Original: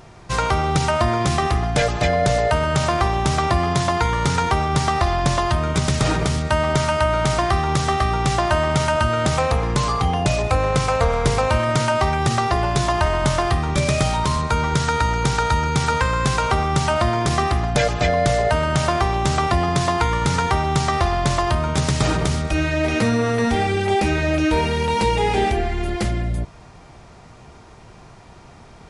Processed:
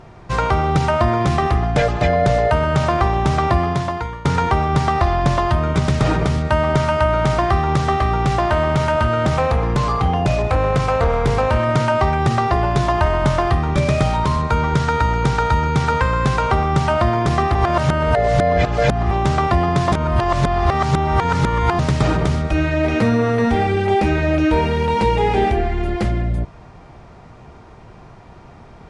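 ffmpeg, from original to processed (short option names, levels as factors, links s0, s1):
-filter_complex "[0:a]asettb=1/sr,asplit=3[s0][s1][s2];[s0]atrim=end=7.954[s3];[s1]atrim=start=7.95:end=11.64,asetpts=PTS-STARTPTS,afade=t=in:d=0.004:c=qsin,afade=t=out:st=3.686:d=0.004:c=qsin,asoftclip=type=hard:threshold=0.211[s4];[s2]atrim=start=11.636[s5];[s3][s4]acrossfade=d=0.004:c1=hsin:c2=qsin[s6];[s6][s5]acrossfade=d=0.004:c1=qsin:c2=hsin,asplit=6[s7][s8][s9][s10][s11][s12];[s7]atrim=end=4.25,asetpts=PTS-STARTPTS,afade=t=out:st=3.54:d=0.71:silence=0.133352[s13];[s8]atrim=start=4.25:end=17.552,asetpts=PTS-STARTPTS,afade=t=in:d=0.004:c=hsin:silence=0.133352[s14];[s9]atrim=start=17.548:end=19.112,asetpts=PTS-STARTPTS,areverse[s15];[s10]atrim=start=19.108:end=19.922[s16];[s11]atrim=start=19.918:end=21.792,asetpts=PTS-STARTPTS,areverse[s17];[s12]atrim=start=21.788[s18];[s13][s14]concat=n=2:v=0:a=1[s19];[s19][s15]acrossfade=d=0.004:c1=hsin:c2=hsin[s20];[s20][s16]acrossfade=d=0.004:c1=hsin:c2=hsin[s21];[s21][s17]acrossfade=d=0.004:c1=hsin:c2=hsin[s22];[s22][s18]acrossfade=d=0.004:c1=hsin:c2=hsin,lowpass=f=1900:p=1,volume=1.41"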